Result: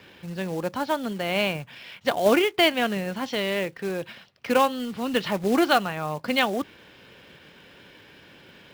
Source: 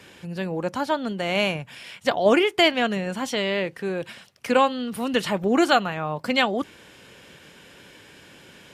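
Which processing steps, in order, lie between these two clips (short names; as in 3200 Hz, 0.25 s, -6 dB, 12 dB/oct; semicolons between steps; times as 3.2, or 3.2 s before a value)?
LPF 4900 Hz 24 dB/oct; short-mantissa float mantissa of 2-bit; gain -1.5 dB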